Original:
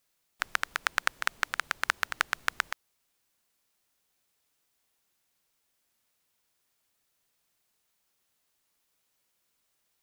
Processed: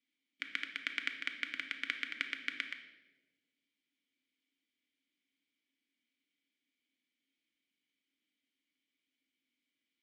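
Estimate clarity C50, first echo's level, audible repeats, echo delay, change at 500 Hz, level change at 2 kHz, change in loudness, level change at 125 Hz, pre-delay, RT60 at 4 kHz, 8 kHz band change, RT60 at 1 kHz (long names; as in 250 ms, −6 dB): 9.0 dB, no echo audible, no echo audible, no echo audible, −16.0 dB, −8.0 dB, −8.0 dB, can't be measured, 3 ms, 0.85 s, −20.0 dB, 1.0 s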